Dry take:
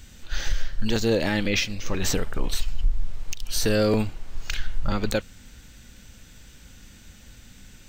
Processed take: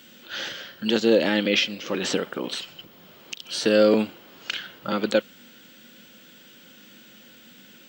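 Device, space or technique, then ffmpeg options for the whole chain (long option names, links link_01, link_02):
old television with a line whistle: -af "highpass=frequency=180:width=0.5412,highpass=frequency=180:width=1.3066,equalizer=frequency=230:width_type=q:width=4:gain=3,equalizer=frequency=340:width_type=q:width=4:gain=5,equalizer=frequency=530:width_type=q:width=4:gain=6,equalizer=frequency=1400:width_type=q:width=4:gain=4,equalizer=frequency=3100:width_type=q:width=4:gain=8,equalizer=frequency=6300:width_type=q:width=4:gain=-6,lowpass=frequency=7600:width=0.5412,lowpass=frequency=7600:width=1.3066,aeval=exprs='val(0)+0.00224*sin(2*PI*15625*n/s)':channel_layout=same"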